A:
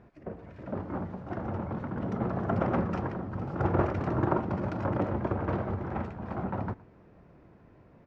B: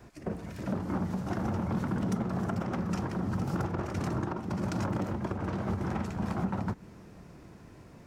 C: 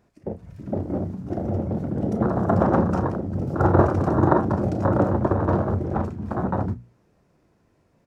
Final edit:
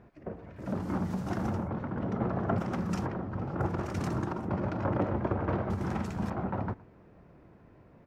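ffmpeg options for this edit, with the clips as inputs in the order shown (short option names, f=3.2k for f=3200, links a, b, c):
-filter_complex "[1:a]asplit=4[a][b][c][d];[0:a]asplit=5[e][f][g][h][i];[e]atrim=end=0.79[j];[a]atrim=start=0.55:end=1.73[k];[f]atrim=start=1.49:end=2.582[l];[b]atrim=start=2.578:end=3.062[m];[g]atrim=start=3.058:end=3.72[n];[c]atrim=start=3.56:end=4.53[o];[h]atrim=start=4.37:end=5.702[p];[d]atrim=start=5.698:end=6.302[q];[i]atrim=start=6.298[r];[j][k]acrossfade=d=0.24:c1=tri:c2=tri[s];[s][l]acrossfade=d=0.24:c1=tri:c2=tri[t];[t][m]acrossfade=d=0.004:c1=hsin:c2=hsin[u];[u][n]acrossfade=d=0.004:c1=hsin:c2=hsin[v];[v][o]acrossfade=d=0.16:c1=tri:c2=tri[w];[w][p]acrossfade=d=0.16:c1=tri:c2=tri[x];[x][q]acrossfade=d=0.004:c1=hsin:c2=hsin[y];[y][r]acrossfade=d=0.004:c1=hsin:c2=hsin"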